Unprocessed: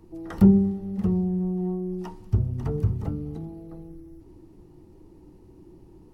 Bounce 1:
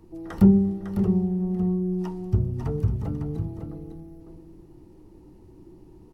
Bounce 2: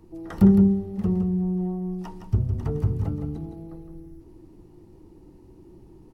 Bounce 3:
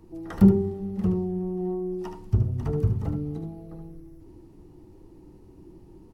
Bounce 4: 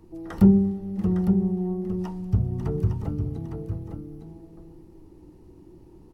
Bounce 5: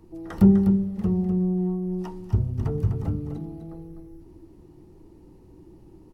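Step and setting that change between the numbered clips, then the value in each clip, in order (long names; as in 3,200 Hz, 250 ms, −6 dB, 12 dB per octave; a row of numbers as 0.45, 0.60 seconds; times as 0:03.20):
single-tap delay, delay time: 553, 163, 74, 858, 251 milliseconds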